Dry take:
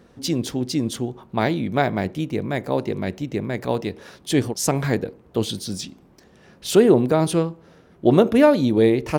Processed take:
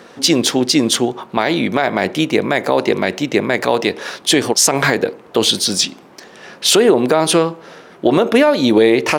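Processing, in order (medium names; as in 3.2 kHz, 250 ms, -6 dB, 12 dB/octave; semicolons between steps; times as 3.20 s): frequency weighting A; compression 10:1, threshold -22 dBFS, peak gain reduction 11.5 dB; loudness maximiser +17.5 dB; trim -1 dB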